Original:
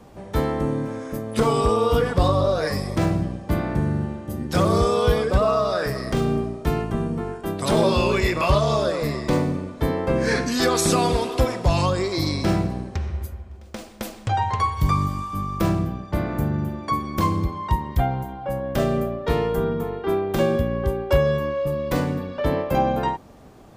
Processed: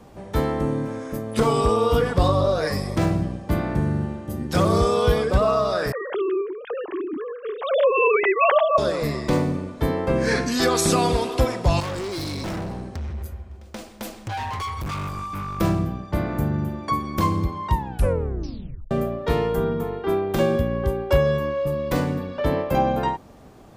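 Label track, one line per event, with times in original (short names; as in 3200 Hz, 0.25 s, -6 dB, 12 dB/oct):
5.920000	8.780000	sine-wave speech
11.800000	15.590000	overloaded stage gain 27 dB
17.730000	17.730000	tape stop 1.18 s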